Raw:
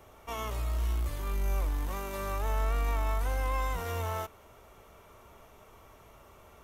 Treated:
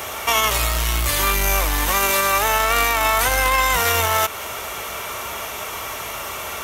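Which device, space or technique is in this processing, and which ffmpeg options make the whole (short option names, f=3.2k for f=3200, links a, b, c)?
mastering chain: -filter_complex "[0:a]asettb=1/sr,asplit=3[a][b][c];[a]atrim=end=2.104[d];[b]atrim=start=2.1:end=3.28,asetpts=PTS-STARTPTS,afade=t=in:d=0.004:c=qsin,afade=t=out:st=1.176:d=0.004:c=qsin,highpass=f=94:p=1[e];[c]atrim=start=3.276[f];[d][e]acrossfade=d=0.004:c1=hsin:c2=qsin[g];[g][f]acrossfade=d=0.004:c1=qsin:c2=hsin,highpass=51,equalizer=f=1.1k:t=o:w=0.77:g=-2,acompressor=threshold=-42dB:ratio=1.5,asoftclip=type=tanh:threshold=-31.5dB,tiltshelf=f=730:g=-9,alimiter=level_in=32.5dB:limit=-1dB:release=50:level=0:latency=1,volume=-7.5dB"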